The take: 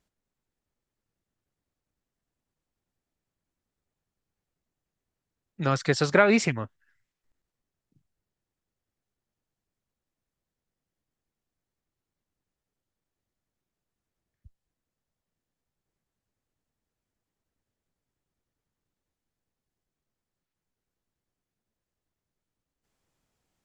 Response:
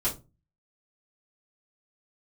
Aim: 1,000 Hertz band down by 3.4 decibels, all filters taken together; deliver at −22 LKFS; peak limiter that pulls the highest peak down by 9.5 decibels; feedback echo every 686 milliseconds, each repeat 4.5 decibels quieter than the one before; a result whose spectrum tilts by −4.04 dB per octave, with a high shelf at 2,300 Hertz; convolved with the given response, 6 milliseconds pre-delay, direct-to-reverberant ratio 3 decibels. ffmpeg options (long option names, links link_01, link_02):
-filter_complex "[0:a]equalizer=frequency=1000:width_type=o:gain=-7,highshelf=frequency=2300:gain=5.5,alimiter=limit=-15dB:level=0:latency=1,aecho=1:1:686|1372|2058|2744|3430|4116|4802|5488|6174:0.596|0.357|0.214|0.129|0.0772|0.0463|0.0278|0.0167|0.01,asplit=2[link_01][link_02];[1:a]atrim=start_sample=2205,adelay=6[link_03];[link_02][link_03]afir=irnorm=-1:irlink=0,volume=-10.5dB[link_04];[link_01][link_04]amix=inputs=2:normalize=0,volume=7dB"